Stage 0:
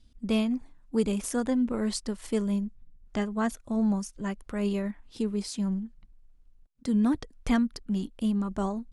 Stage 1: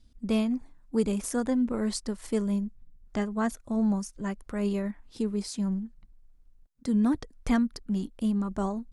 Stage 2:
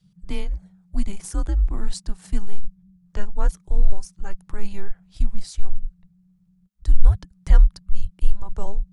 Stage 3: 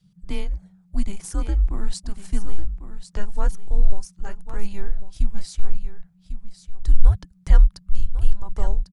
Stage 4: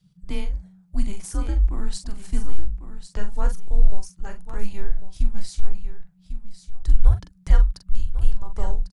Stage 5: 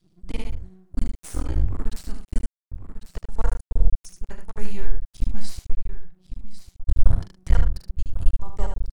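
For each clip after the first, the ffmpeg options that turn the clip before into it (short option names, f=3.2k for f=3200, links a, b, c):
-af "equalizer=f=3k:t=o:w=0.7:g=-4"
-af "afreqshift=-200,asubboost=boost=9:cutoff=58,volume=-1dB"
-af "aecho=1:1:1098:0.282"
-filter_complex "[0:a]asplit=2[a][b];[b]adelay=43,volume=-8dB[c];[a][c]amix=inputs=2:normalize=0,volume=-1dB"
-af "aeval=exprs='max(val(0),0)':c=same,aecho=1:1:75:0.501,volume=1dB"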